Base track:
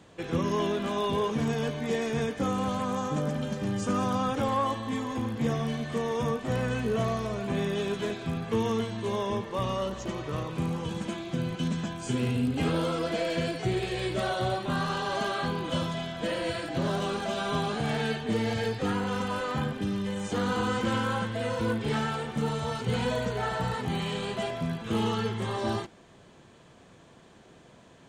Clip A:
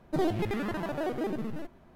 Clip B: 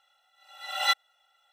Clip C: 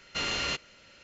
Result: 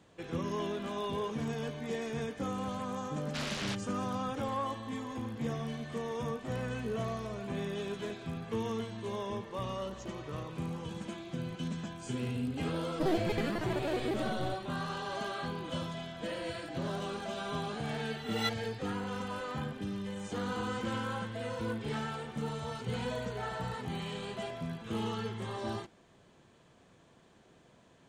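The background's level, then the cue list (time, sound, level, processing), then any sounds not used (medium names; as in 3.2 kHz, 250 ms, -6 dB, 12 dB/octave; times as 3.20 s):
base track -7.5 dB
3.19 s: add C -7.5 dB + loudspeaker Doppler distortion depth 0.87 ms
12.87 s: add A -3 dB
17.56 s: add B -10 dB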